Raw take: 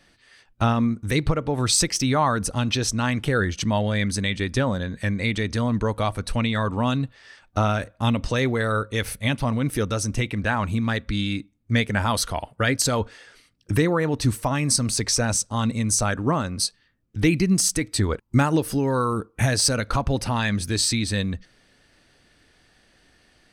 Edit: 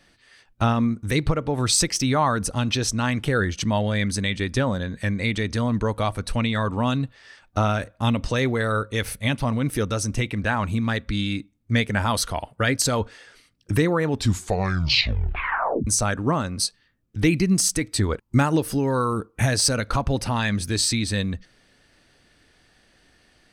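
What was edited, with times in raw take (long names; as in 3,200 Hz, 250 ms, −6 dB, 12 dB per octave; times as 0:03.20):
0:14.06: tape stop 1.81 s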